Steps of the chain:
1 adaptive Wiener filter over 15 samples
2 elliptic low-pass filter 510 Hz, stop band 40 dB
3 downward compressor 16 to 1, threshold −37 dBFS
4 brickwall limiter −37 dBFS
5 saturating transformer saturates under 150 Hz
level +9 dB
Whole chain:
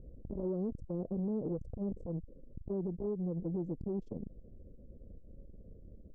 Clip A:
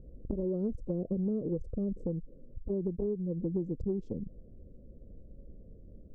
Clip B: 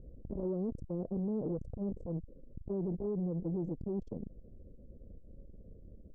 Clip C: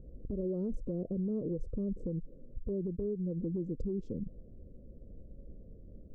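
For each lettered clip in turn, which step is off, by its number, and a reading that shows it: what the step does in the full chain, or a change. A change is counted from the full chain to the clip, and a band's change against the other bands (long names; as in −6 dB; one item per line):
4, change in crest factor +5.0 dB
3, average gain reduction 4.5 dB
5, change in crest factor −2.0 dB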